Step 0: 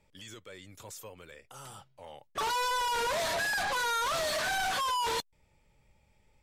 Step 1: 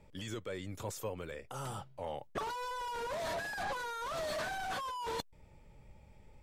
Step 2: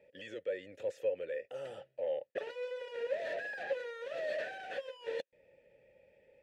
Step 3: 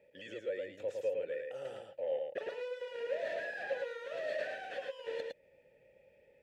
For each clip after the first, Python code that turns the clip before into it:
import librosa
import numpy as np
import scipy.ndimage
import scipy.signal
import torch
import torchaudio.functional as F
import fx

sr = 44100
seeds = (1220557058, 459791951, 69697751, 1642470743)

y1 = fx.over_compress(x, sr, threshold_db=-35.0, ratio=-0.5)
y1 = fx.tilt_shelf(y1, sr, db=5.0, hz=1300.0)
y1 = y1 * 10.0 ** (-1.5 / 20.0)
y2 = fx.vowel_filter(y1, sr, vowel='e')
y2 = y2 * 10.0 ** (10.5 / 20.0)
y3 = y2 + 10.0 ** (-3.5 / 20.0) * np.pad(y2, (int(109 * sr / 1000.0), 0))[:len(y2)]
y3 = y3 * 10.0 ** (-1.5 / 20.0)